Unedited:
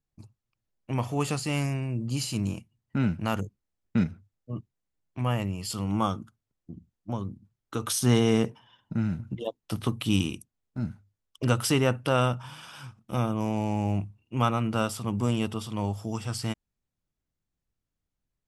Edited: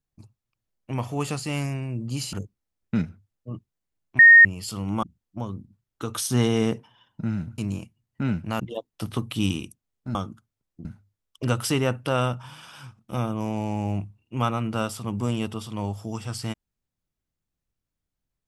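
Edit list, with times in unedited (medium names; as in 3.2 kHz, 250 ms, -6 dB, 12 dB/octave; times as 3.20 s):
2.33–3.35 s: move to 9.30 s
5.21–5.47 s: bleep 1.85 kHz -7 dBFS
6.05–6.75 s: move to 10.85 s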